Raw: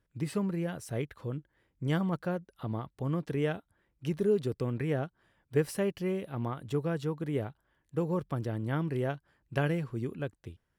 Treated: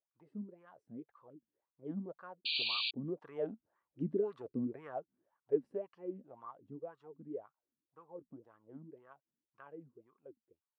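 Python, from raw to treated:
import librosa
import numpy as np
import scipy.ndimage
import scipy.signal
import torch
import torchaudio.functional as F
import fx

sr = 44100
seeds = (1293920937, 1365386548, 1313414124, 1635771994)

y = fx.doppler_pass(x, sr, speed_mps=6, closest_m=4.5, pass_at_s=4.02)
y = fx.wah_lfo(y, sr, hz=1.9, low_hz=220.0, high_hz=1200.0, q=7.6)
y = fx.spec_paint(y, sr, seeds[0], shape='noise', start_s=2.45, length_s=0.46, low_hz=2300.0, high_hz=4700.0, level_db=-44.0)
y = y * librosa.db_to_amplitude(8.5)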